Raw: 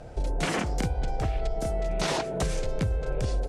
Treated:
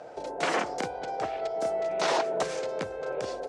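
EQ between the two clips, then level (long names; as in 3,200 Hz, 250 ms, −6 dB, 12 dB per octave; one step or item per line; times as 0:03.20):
band-pass filter 500–5,300 Hz
parametric band 3,000 Hz −6.5 dB 2 octaves
+6.0 dB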